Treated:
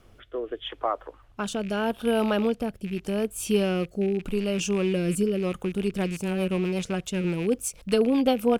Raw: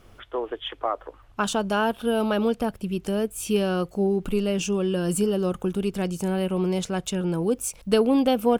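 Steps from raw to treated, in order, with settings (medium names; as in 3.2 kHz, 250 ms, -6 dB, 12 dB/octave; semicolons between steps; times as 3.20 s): rattle on loud lows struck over -34 dBFS, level -27 dBFS; rotary cabinet horn 0.8 Hz, later 8 Hz, at 5.28 s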